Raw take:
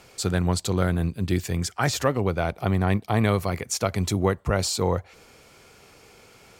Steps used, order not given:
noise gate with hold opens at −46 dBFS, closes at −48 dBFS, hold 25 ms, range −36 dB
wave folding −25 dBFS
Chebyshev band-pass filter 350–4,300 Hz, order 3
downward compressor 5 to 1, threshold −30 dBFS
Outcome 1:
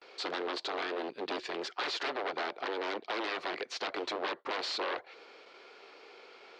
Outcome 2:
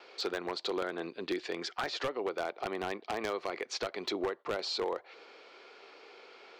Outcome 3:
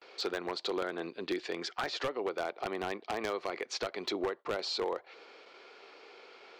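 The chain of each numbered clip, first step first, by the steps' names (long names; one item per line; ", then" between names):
wave folding, then Chebyshev band-pass filter, then downward compressor, then noise gate with hold
noise gate with hold, then Chebyshev band-pass filter, then downward compressor, then wave folding
Chebyshev band-pass filter, then noise gate with hold, then downward compressor, then wave folding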